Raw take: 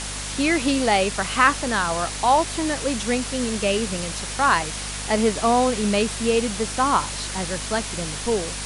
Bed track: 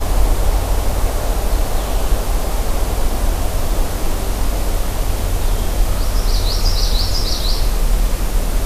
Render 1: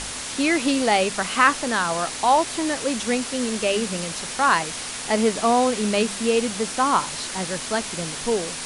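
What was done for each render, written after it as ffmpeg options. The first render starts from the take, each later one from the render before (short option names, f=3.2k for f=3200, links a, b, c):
-af "bandreject=f=50:t=h:w=4,bandreject=f=100:t=h:w=4,bandreject=f=150:t=h:w=4,bandreject=f=200:t=h:w=4"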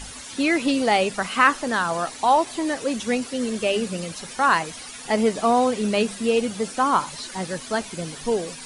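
-af "afftdn=nr=12:nf=-32"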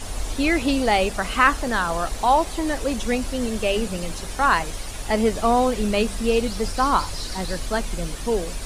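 -filter_complex "[1:a]volume=-14.5dB[a];[0:a][a]amix=inputs=2:normalize=0"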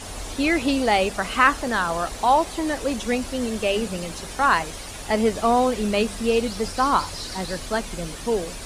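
-af "highpass=f=88:p=1,highshelf=f=12k:g=-4"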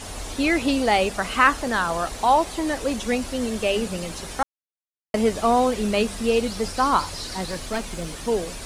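-filter_complex "[0:a]asettb=1/sr,asplit=3[a][b][c];[a]atrim=end=7.494[d];[b]atrim=start=7.49:end=8.28,asetpts=PTS-STARTPTS,afade=t=in:d=0.004:c=qsin,afade=t=out:st=0.786:d=0.004:c=qsin,aeval=exprs='clip(val(0),-1,0.0473)':c=same[e];[c]atrim=start=8.276[f];[d][e]acrossfade=d=0.004:c1=hsin:c2=qsin[g];[g][f]acrossfade=d=0.004:c1=qsin:c2=hsin,asplit=3[h][i][j];[h]atrim=end=4.43,asetpts=PTS-STARTPTS,afade=t=out:st=4.426:d=0.004:c=hsin[k];[i]atrim=start=4.43:end=5.14,asetpts=PTS-STARTPTS,volume=0[l];[j]atrim=start=5.14,asetpts=PTS-STARTPTS,afade=t=in:d=0.004:c=hsin[m];[k][l][m]concat=n=3:v=0:a=1"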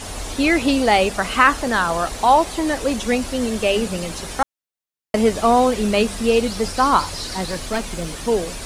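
-af "volume=4dB,alimiter=limit=-1dB:level=0:latency=1"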